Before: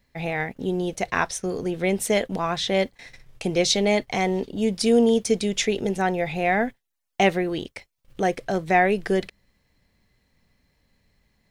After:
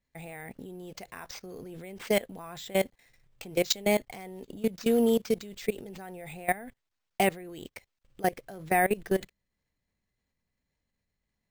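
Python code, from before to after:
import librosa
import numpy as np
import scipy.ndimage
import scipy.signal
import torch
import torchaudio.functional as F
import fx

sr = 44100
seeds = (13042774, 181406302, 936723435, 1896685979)

y = np.repeat(x[::4], 4)[:len(x)]
y = fx.level_steps(y, sr, step_db=20)
y = y * 10.0 ** (-2.5 / 20.0)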